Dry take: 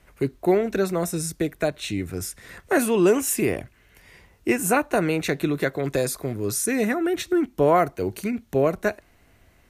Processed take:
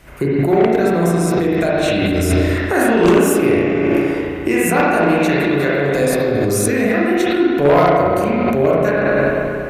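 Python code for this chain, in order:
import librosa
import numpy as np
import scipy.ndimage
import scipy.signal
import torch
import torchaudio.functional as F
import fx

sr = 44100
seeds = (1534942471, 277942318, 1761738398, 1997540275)

p1 = fx.echo_bbd(x, sr, ms=312, stages=4096, feedback_pct=51, wet_db=-15.0)
p2 = fx.rev_spring(p1, sr, rt60_s=1.8, pass_ms=(35, 58), chirp_ms=65, drr_db=-7.0)
p3 = fx.cheby_harmonics(p2, sr, harmonics=(5, 7), levels_db=(-8, -13), full_scale_db=0.5)
p4 = fx.over_compress(p3, sr, threshold_db=-21.0, ratio=-0.5)
p5 = p3 + F.gain(torch.from_numpy(p4), 1.5).numpy()
y = F.gain(torch.from_numpy(p5), -4.5).numpy()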